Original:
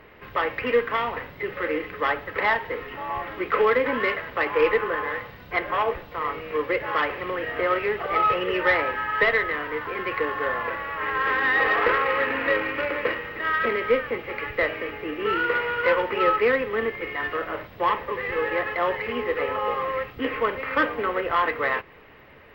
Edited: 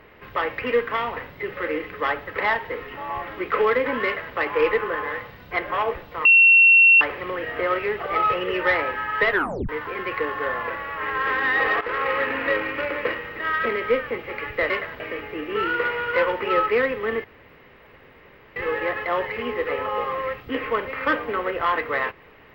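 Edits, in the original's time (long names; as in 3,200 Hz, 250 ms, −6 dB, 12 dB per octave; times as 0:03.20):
0:04.05–0:04.35: duplicate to 0:14.70
0:06.25–0:07.01: beep over 2,720 Hz −9.5 dBFS
0:09.31: tape stop 0.38 s
0:11.81–0:12.06: fade in, from −16 dB
0:16.94–0:18.26: fill with room tone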